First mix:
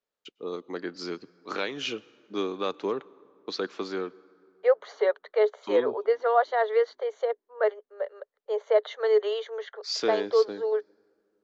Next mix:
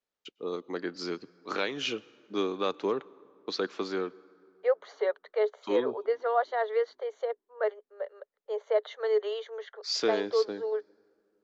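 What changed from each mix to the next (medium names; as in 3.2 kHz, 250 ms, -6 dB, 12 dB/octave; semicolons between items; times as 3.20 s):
second voice -4.5 dB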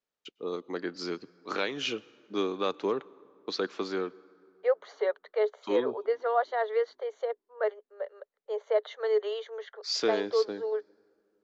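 no change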